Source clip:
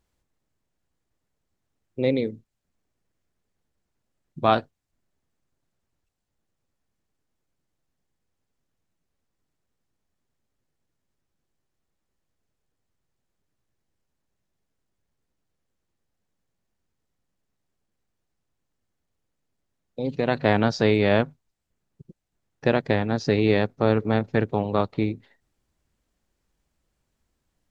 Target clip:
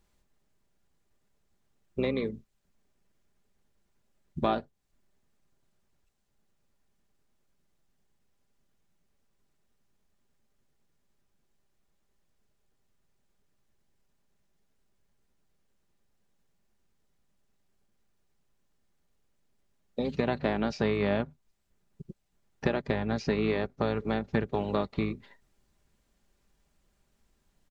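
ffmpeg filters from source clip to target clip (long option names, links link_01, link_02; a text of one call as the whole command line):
ffmpeg -i in.wav -filter_complex "[0:a]acrossover=split=990|2300[link_01][link_02][link_03];[link_01]acompressor=threshold=-30dB:ratio=4[link_04];[link_02]acompressor=threshold=-43dB:ratio=4[link_05];[link_03]acompressor=threshold=-48dB:ratio=4[link_06];[link_04][link_05][link_06]amix=inputs=3:normalize=0,asplit=2[link_07][link_08];[link_08]asetrate=22050,aresample=44100,atempo=2,volume=-9dB[link_09];[link_07][link_09]amix=inputs=2:normalize=0,aecho=1:1:5:0.31,volume=2.5dB" out.wav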